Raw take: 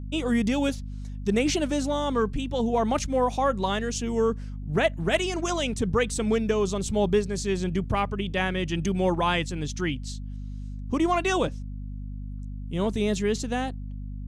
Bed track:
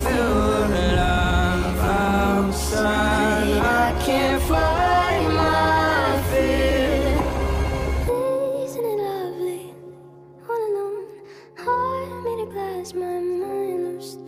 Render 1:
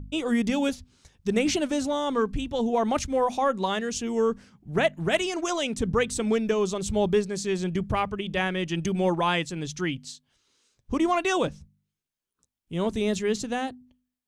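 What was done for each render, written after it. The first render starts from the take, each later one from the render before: de-hum 50 Hz, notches 5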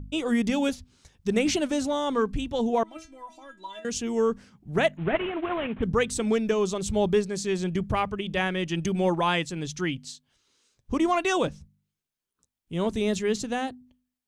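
2.83–3.85 s: inharmonic resonator 320 Hz, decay 0.24 s, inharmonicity 0.002; 4.97–5.83 s: CVSD coder 16 kbps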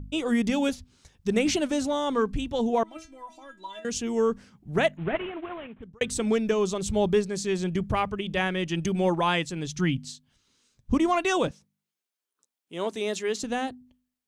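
4.80–6.01 s: fade out; 9.76–10.98 s: resonant low shelf 290 Hz +6 dB, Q 1.5; 11.51–13.43 s: high-pass 360 Hz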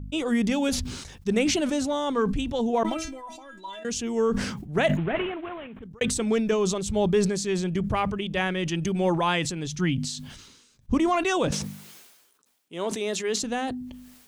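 decay stretcher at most 48 dB/s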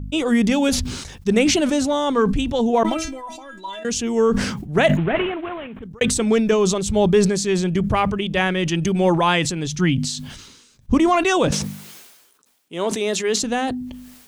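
trim +6.5 dB

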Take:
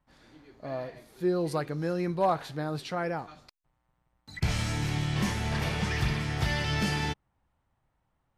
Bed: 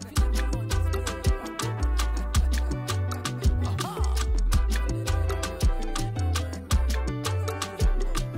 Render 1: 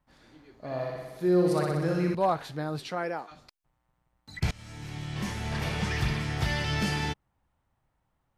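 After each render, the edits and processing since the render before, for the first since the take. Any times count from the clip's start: 0.65–2.15 s: flutter echo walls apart 10.5 m, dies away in 1.2 s; 2.89–3.30 s: high-pass 160 Hz -> 390 Hz; 4.51–5.80 s: fade in, from -23.5 dB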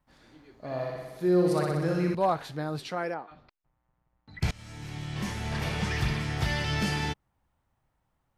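3.14–4.40 s: distance through air 350 m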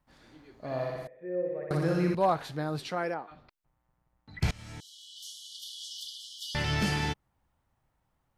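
1.07–1.71 s: cascade formant filter e; 4.80–6.55 s: brick-wall FIR high-pass 2.9 kHz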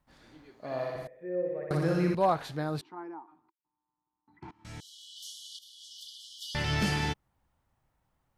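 0.50–0.95 s: high-pass 240 Hz 6 dB/octave; 2.81–4.65 s: two resonant band-passes 550 Hz, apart 1.5 oct; 5.59–6.75 s: fade in, from -12.5 dB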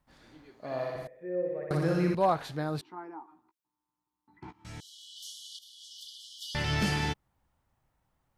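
2.85–4.70 s: doubling 16 ms -8 dB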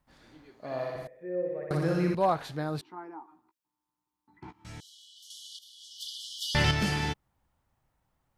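4.70–5.30 s: fade out linear, to -9.5 dB; 6.00–6.71 s: gain +7 dB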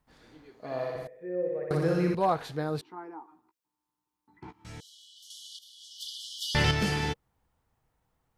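peaking EQ 470 Hz +7 dB 0.31 oct; band-stop 560 Hz, Q 12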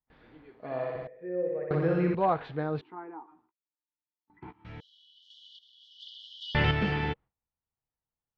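low-pass 3.1 kHz 24 dB/octave; gate with hold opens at -54 dBFS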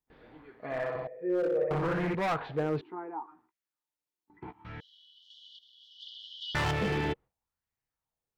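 overload inside the chain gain 28.5 dB; sweeping bell 0.71 Hz 340–2000 Hz +8 dB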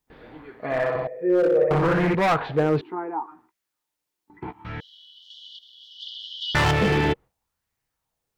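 trim +9.5 dB

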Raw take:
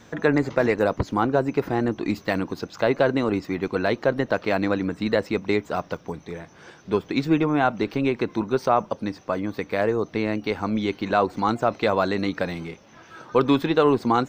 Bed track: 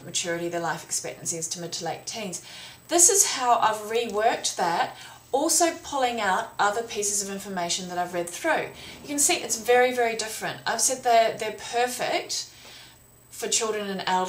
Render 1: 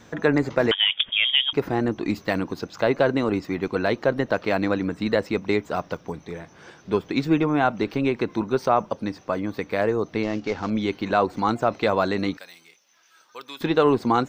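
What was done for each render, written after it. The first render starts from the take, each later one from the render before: 0.71–1.53 s: frequency inversion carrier 3.5 kHz; 10.23–10.70 s: CVSD coder 32 kbps; 12.37–13.61 s: differentiator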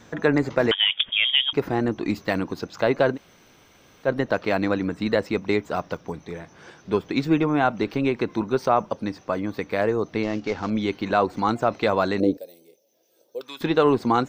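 3.15–4.06 s: room tone, crossfade 0.06 s; 12.20–13.41 s: FFT filter 180 Hz 0 dB, 550 Hz +13 dB, 1.2 kHz -26 dB, 3.3 kHz -12 dB, 7.1 kHz -8 dB, 13 kHz +6 dB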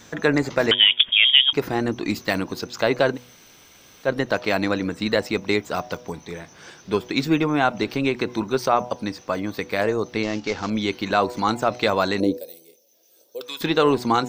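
treble shelf 2.9 kHz +11 dB; de-hum 122.7 Hz, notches 8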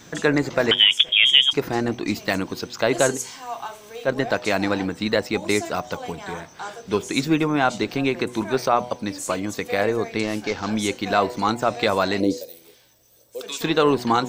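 add bed track -11.5 dB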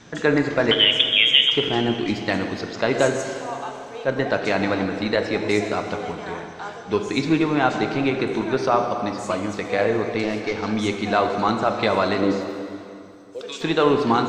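distance through air 98 m; plate-style reverb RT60 2.6 s, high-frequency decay 0.8×, DRR 4.5 dB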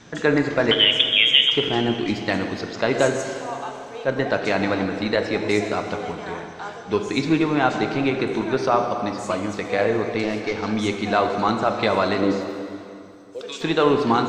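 no audible change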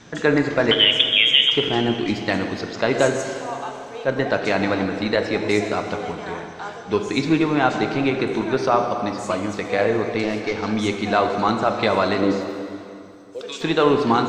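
trim +1 dB; peak limiter -3 dBFS, peak gain reduction 2 dB

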